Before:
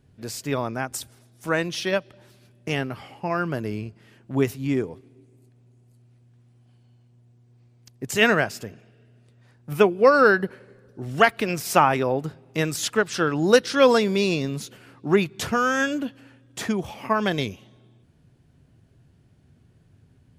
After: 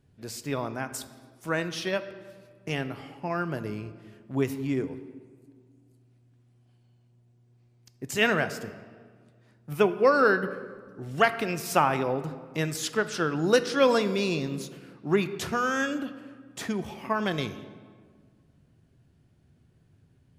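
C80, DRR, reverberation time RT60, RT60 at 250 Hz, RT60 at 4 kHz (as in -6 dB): 14.5 dB, 11.0 dB, 1.8 s, 2.3 s, 1.0 s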